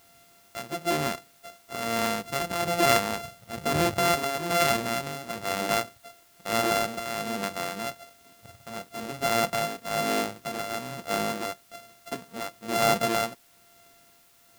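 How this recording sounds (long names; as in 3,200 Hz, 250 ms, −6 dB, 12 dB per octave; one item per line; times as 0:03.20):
a buzz of ramps at a fixed pitch in blocks of 64 samples
tremolo triangle 1.1 Hz, depth 80%
a quantiser's noise floor 10 bits, dither triangular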